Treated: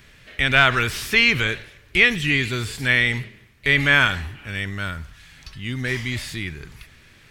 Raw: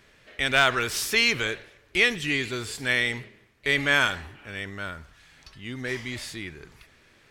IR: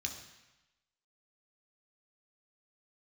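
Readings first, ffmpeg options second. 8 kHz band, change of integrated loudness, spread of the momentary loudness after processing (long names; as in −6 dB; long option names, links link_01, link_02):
−1.5 dB, +5.0 dB, 16 LU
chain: -filter_complex "[0:a]bass=frequency=250:gain=13,treble=frequency=4000:gain=-12,crystalizer=i=8.5:c=0,acrossover=split=3300[link_01][link_02];[link_02]acompressor=threshold=-32dB:ratio=4:attack=1:release=60[link_03];[link_01][link_03]amix=inputs=2:normalize=0,volume=-1dB"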